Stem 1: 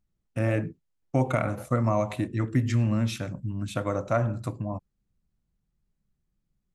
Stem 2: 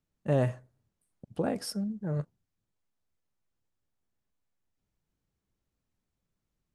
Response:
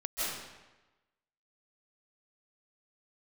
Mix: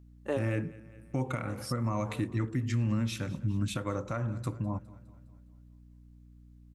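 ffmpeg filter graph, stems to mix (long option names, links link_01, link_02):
-filter_complex "[0:a]volume=1.5dB,asplit=3[link_01][link_02][link_03];[link_02]volume=-22.5dB[link_04];[1:a]highpass=frequency=300:width=0.5412,highpass=frequency=300:width=1.3066,volume=2.5dB[link_05];[link_03]apad=whole_len=297393[link_06];[link_05][link_06]sidechaincompress=threshold=-25dB:ratio=8:attack=9.3:release=693[link_07];[link_04]aecho=0:1:205|410|615|820|1025|1230|1435:1|0.51|0.26|0.133|0.0677|0.0345|0.0176[link_08];[link_01][link_07][link_08]amix=inputs=3:normalize=0,equalizer=frequency=660:width_type=o:width=0.33:gain=-11,aeval=exprs='val(0)+0.00224*(sin(2*PI*60*n/s)+sin(2*PI*2*60*n/s)/2+sin(2*PI*3*60*n/s)/3+sin(2*PI*4*60*n/s)/4+sin(2*PI*5*60*n/s)/5)':channel_layout=same,alimiter=limit=-21dB:level=0:latency=1:release=454"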